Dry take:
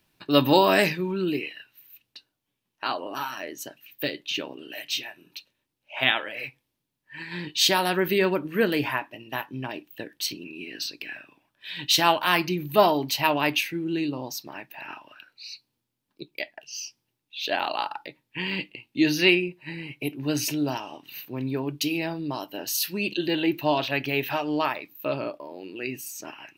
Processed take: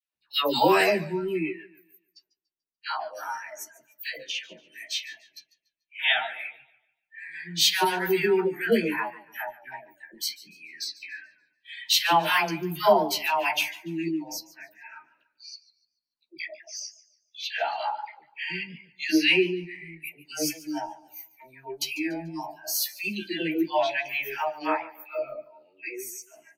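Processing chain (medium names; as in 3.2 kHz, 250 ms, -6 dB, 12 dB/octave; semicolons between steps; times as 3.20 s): spectral noise reduction 24 dB; doubling 13 ms -3 dB; phase dispersion lows, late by 149 ms, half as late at 840 Hz; modulated delay 145 ms, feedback 33%, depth 97 cents, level -18.5 dB; trim -2 dB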